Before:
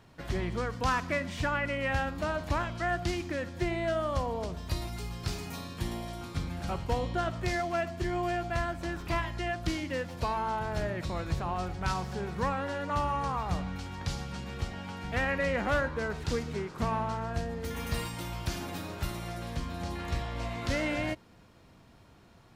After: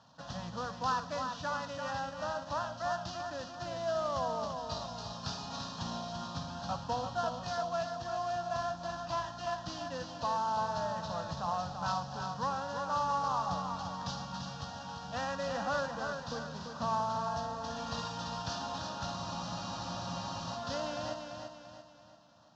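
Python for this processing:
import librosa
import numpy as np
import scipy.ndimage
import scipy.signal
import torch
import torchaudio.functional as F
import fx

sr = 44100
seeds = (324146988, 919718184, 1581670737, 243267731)

y = fx.cvsd(x, sr, bps=32000)
y = scipy.signal.sosfilt(scipy.signal.butter(2, 190.0, 'highpass', fs=sr, output='sos'), y)
y = fx.high_shelf(y, sr, hz=5000.0, db=10.0)
y = fx.rider(y, sr, range_db=4, speed_s=2.0)
y = fx.air_absorb(y, sr, metres=88.0)
y = fx.fixed_phaser(y, sr, hz=900.0, stages=4)
y = fx.echo_feedback(y, sr, ms=340, feedback_pct=43, wet_db=-6.0)
y = fx.spec_freeze(y, sr, seeds[0], at_s=19.18, hold_s=1.38)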